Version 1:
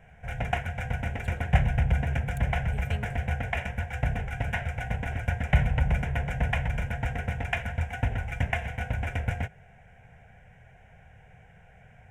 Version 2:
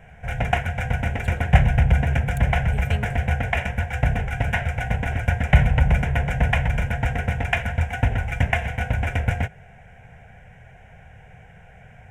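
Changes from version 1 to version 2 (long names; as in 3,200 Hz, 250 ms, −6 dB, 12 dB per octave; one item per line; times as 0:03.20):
speech +7.0 dB
background +7.0 dB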